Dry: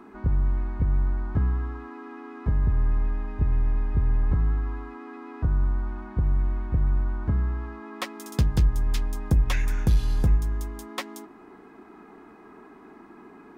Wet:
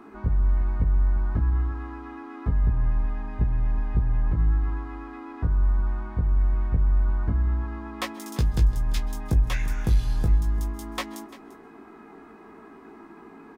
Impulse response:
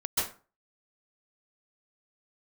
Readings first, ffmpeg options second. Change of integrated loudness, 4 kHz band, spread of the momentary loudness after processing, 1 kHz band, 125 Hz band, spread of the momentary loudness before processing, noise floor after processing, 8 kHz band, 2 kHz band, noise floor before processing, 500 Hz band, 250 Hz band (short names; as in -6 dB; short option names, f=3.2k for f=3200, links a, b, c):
+0.5 dB, +0.5 dB, 10 LU, +1.0 dB, 0.0 dB, 13 LU, -47 dBFS, n/a, 0.0 dB, -49 dBFS, -1.0 dB, -1.0 dB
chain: -filter_complex "[0:a]alimiter=limit=-16.5dB:level=0:latency=1:release=469,asplit=2[a][b];[b]adelay=18,volume=-4.5dB[c];[a][c]amix=inputs=2:normalize=0,aecho=1:1:344:0.119,asplit=2[d][e];[1:a]atrim=start_sample=2205[f];[e][f]afir=irnorm=-1:irlink=0,volume=-27.5dB[g];[d][g]amix=inputs=2:normalize=0"